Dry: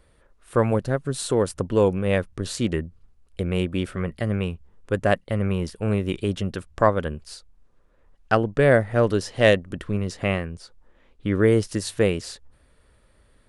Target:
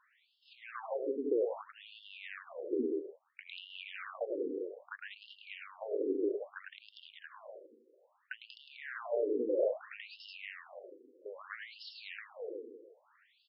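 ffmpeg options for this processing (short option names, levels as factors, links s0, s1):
-filter_complex "[0:a]asplit=2[s0][s1];[s1]adelay=159,lowpass=f=850:p=1,volume=0.211,asplit=2[s2][s3];[s3]adelay=159,lowpass=f=850:p=1,volume=0.49,asplit=2[s4][s5];[s5]adelay=159,lowpass=f=850:p=1,volume=0.49,asplit=2[s6][s7];[s7]adelay=159,lowpass=f=850:p=1,volume=0.49,asplit=2[s8][s9];[s9]adelay=159,lowpass=f=850:p=1,volume=0.49[s10];[s2][s4][s6][s8][s10]amix=inputs=5:normalize=0[s11];[s0][s11]amix=inputs=2:normalize=0,asoftclip=type=tanh:threshold=0.562,alimiter=limit=0.224:level=0:latency=1,acrossover=split=670|2200[s12][s13][s14];[s12]acompressor=threshold=0.0398:ratio=4[s15];[s13]acompressor=threshold=0.00631:ratio=4[s16];[s14]acompressor=threshold=0.00316:ratio=4[s17];[s15][s16][s17]amix=inputs=3:normalize=0,asplit=2[s18][s19];[s19]aecho=0:1:105|189.5:0.708|0.794[s20];[s18][s20]amix=inputs=2:normalize=0,afftfilt=real='re*between(b*sr/1024,350*pow(3900/350,0.5+0.5*sin(2*PI*0.61*pts/sr))/1.41,350*pow(3900/350,0.5+0.5*sin(2*PI*0.61*pts/sr))*1.41)':imag='im*between(b*sr/1024,350*pow(3900/350,0.5+0.5*sin(2*PI*0.61*pts/sr))/1.41,350*pow(3900/350,0.5+0.5*sin(2*PI*0.61*pts/sr))*1.41)':win_size=1024:overlap=0.75"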